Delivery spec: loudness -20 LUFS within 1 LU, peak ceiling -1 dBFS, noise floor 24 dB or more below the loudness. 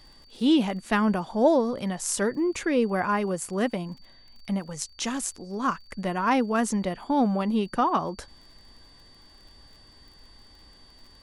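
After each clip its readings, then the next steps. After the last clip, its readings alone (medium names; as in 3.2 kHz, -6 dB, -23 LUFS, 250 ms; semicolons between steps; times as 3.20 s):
tick rate 35 per s; steady tone 4.6 kHz; tone level -54 dBFS; loudness -26.0 LUFS; peak level -10.0 dBFS; loudness target -20.0 LUFS
-> de-click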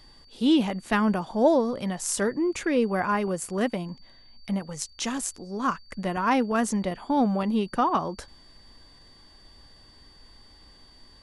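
tick rate 0 per s; steady tone 4.6 kHz; tone level -54 dBFS
-> band-stop 4.6 kHz, Q 30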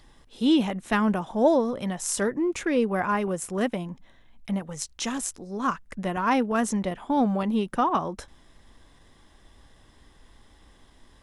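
steady tone not found; loudness -26.0 LUFS; peak level -10.0 dBFS; loudness target -20.0 LUFS
-> trim +6 dB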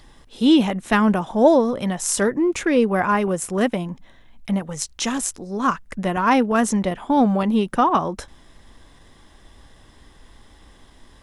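loudness -20.0 LUFS; peak level -4.0 dBFS; noise floor -51 dBFS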